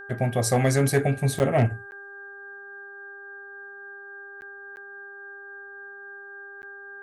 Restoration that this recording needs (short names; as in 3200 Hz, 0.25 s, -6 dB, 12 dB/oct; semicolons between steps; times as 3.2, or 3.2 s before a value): clip repair -12 dBFS; de-hum 399.1 Hz, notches 4; notch 1600 Hz, Q 30; interpolate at 1.39/1.91/4.41/4.76/6.62, 9.9 ms